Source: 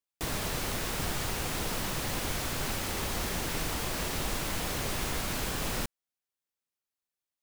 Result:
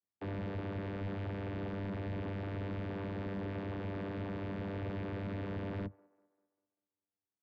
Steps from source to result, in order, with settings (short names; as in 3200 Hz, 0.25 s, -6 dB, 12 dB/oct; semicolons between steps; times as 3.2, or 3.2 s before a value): vocoder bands 16, saw 98.2 Hz; soft clip -35.5 dBFS, distortion -11 dB; air absorption 450 m; on a send: band-limited delay 0.197 s, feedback 44%, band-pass 700 Hz, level -22.5 dB; on the sum: gain +2 dB